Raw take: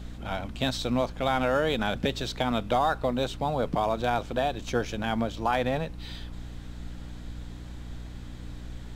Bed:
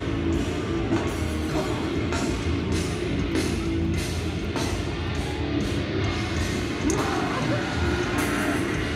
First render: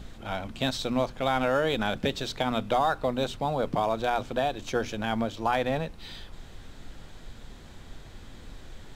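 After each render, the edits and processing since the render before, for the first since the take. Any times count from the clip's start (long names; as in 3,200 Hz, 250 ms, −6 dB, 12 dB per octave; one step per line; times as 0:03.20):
mains-hum notches 60/120/180/240/300 Hz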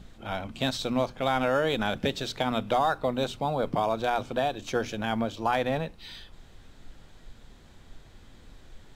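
noise reduction from a noise print 6 dB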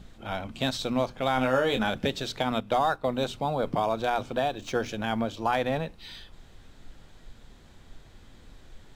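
0:01.35–0:01.90: double-tracking delay 23 ms −6 dB
0:02.60–0:03.05: noise gate −34 dBFS, range −7 dB
0:04.28–0:04.89: running median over 3 samples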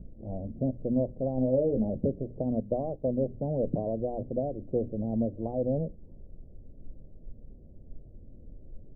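elliptic low-pass filter 590 Hz, stop band 60 dB
low-shelf EQ 160 Hz +5 dB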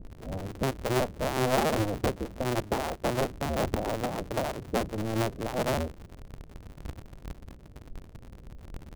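sub-harmonics by changed cycles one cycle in 2, inverted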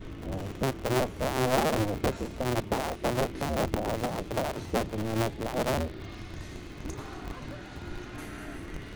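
mix in bed −17 dB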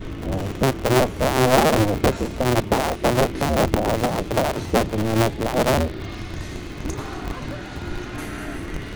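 level +9.5 dB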